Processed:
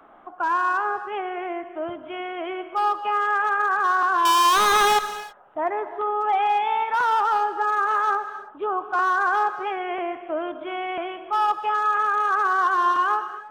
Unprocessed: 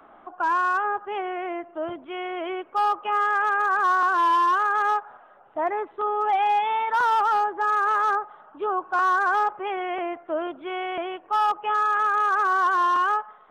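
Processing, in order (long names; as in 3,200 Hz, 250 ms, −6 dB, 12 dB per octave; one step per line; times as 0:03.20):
0:04.25–0:04.99: leveller curve on the samples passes 5
reverb whose tail is shaped and stops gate 350 ms flat, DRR 10 dB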